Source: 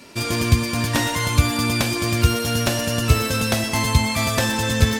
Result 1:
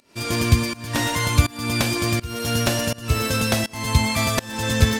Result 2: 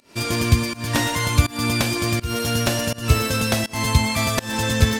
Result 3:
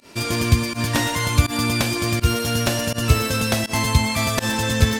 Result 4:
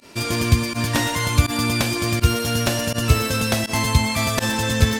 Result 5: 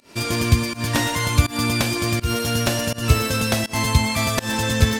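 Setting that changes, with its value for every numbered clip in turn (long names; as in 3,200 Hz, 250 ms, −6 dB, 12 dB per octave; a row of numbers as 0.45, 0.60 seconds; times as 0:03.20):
fake sidechain pumping, release: 441, 251, 91, 62, 168 milliseconds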